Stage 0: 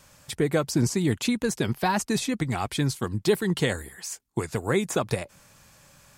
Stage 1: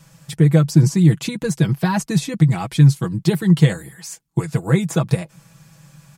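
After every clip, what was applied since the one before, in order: peaking EQ 150 Hz +14.5 dB 0.73 oct; comb 6.1 ms, depth 64%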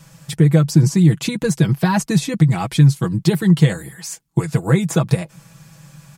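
compression 1.5:1, threshold -17 dBFS, peak gain reduction 4 dB; trim +3.5 dB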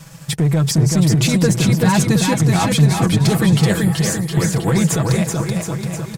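peak limiter -13 dBFS, peak gain reduction 11.5 dB; waveshaping leveller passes 1; bouncing-ball echo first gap 380 ms, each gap 0.9×, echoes 5; trim +3 dB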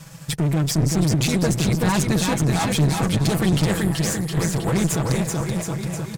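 one-sided clip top -23 dBFS; trim -2 dB

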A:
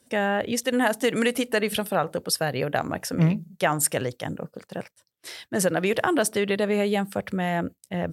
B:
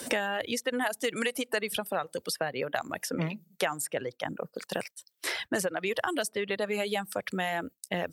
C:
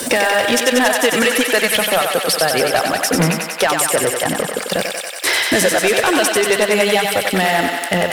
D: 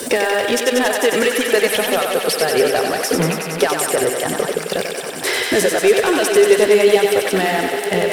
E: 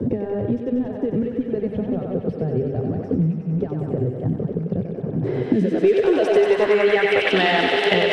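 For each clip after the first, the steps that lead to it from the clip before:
reverb removal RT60 0.93 s; bass shelf 240 Hz -12 dB; three bands compressed up and down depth 100%; trim -4 dB
hum notches 50/100/150/200 Hz; waveshaping leveller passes 3; on a send: thinning echo 93 ms, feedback 83%, high-pass 450 Hz, level -4 dB; on the sum: trim +5 dB
backward echo that repeats 678 ms, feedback 44%, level -9.5 dB; peaking EQ 410 Hz +11 dB 0.36 oct; trim -4 dB
low-pass sweep 100 Hz -> 3.4 kHz, 5.14–7.42 s; three bands compressed up and down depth 100%; trim -1.5 dB

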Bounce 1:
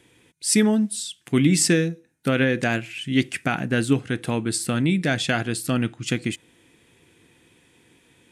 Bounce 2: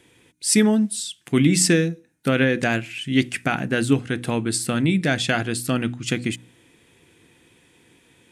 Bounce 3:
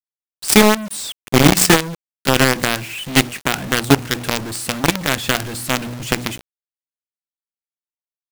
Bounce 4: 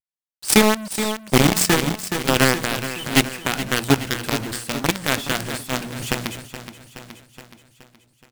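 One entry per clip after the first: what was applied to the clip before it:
de-hum 60.9 Hz, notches 5; trim +1.5 dB
companded quantiser 2-bit; trim -1.5 dB
vibrato 0.4 Hz 16 cents; on a send: feedback delay 422 ms, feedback 53%, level -9.5 dB; on the sum: random flutter of the level, depth 60%; trim -2 dB

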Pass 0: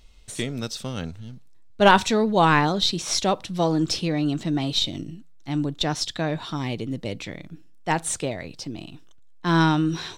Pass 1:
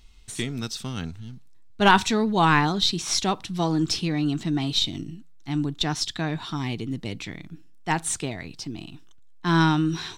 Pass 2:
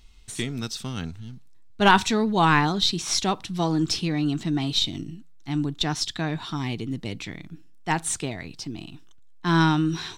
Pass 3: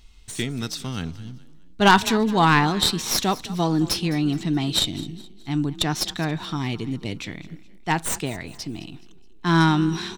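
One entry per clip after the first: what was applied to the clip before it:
peaking EQ 550 Hz -13.5 dB 0.4 oct
no audible change
tracing distortion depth 0.06 ms; frequency-shifting echo 211 ms, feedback 40%, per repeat +31 Hz, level -18.5 dB; trim +2 dB

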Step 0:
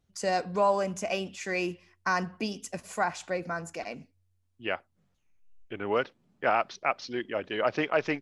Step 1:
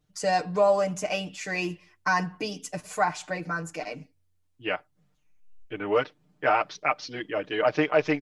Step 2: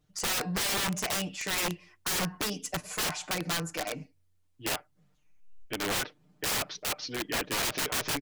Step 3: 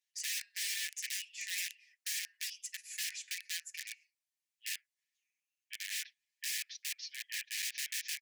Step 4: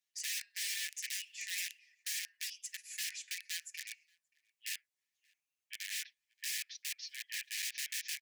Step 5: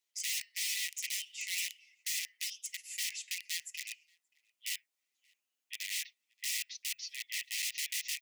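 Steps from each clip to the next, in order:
comb 6.6 ms, depth 93%
integer overflow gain 25.5 dB; trim +1 dB
rippled Chebyshev high-pass 1.7 kHz, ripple 3 dB; trim -5 dB
echo from a far wall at 99 m, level -27 dB; trim -1 dB
frequency shift +200 Hz; trim +3 dB

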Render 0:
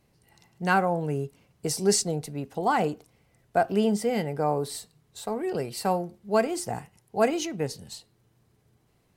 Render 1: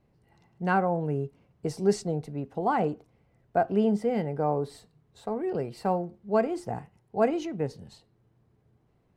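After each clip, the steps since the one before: low-pass 1.1 kHz 6 dB/octave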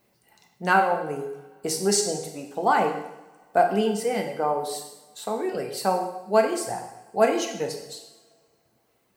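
RIAA curve recording; reverb removal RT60 1.3 s; two-slope reverb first 0.85 s, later 2.9 s, from -24 dB, DRR 2.5 dB; trim +5.5 dB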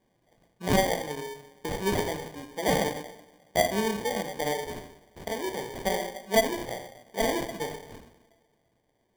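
sample-and-hold 33×; trim -4.5 dB

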